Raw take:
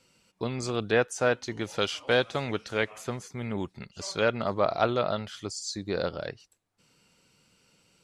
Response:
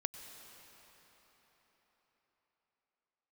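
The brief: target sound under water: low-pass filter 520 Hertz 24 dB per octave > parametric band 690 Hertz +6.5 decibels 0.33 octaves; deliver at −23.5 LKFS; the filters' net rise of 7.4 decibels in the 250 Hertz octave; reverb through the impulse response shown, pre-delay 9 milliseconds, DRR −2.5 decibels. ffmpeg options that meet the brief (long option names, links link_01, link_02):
-filter_complex "[0:a]equalizer=frequency=250:width_type=o:gain=9,asplit=2[link_01][link_02];[1:a]atrim=start_sample=2205,adelay=9[link_03];[link_02][link_03]afir=irnorm=-1:irlink=0,volume=2.5dB[link_04];[link_01][link_04]amix=inputs=2:normalize=0,lowpass=frequency=520:width=0.5412,lowpass=frequency=520:width=1.3066,equalizer=frequency=690:width_type=o:width=0.33:gain=6.5,volume=1dB"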